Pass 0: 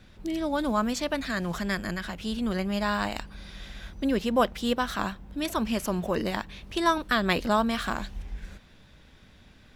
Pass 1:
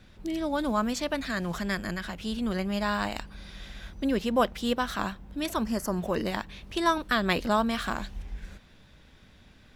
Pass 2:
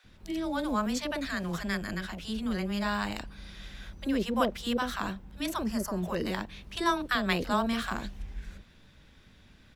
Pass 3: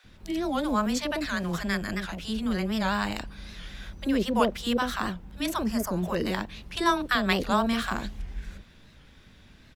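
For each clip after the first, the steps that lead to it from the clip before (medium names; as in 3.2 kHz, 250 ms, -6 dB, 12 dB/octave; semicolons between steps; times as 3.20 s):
time-frequency box 5.65–5.97 s, 2.1–4.3 kHz -12 dB; trim -1 dB
bands offset in time highs, lows 40 ms, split 660 Hz; trim -1.5 dB
warped record 78 rpm, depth 160 cents; trim +3.5 dB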